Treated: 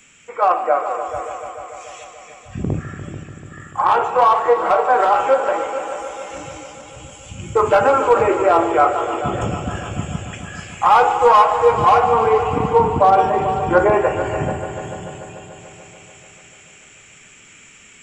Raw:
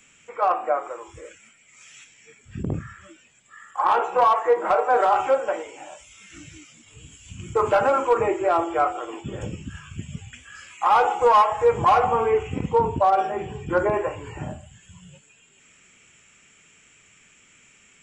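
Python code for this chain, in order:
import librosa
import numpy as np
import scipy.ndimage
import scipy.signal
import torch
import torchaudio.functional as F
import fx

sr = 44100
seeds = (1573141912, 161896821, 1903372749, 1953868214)

p1 = fx.rider(x, sr, range_db=4, speed_s=2.0)
p2 = p1 + fx.echo_heads(p1, sr, ms=146, heads='all three', feedback_pct=61, wet_db=-14.5, dry=0)
y = F.gain(torch.from_numpy(p2), 5.0).numpy()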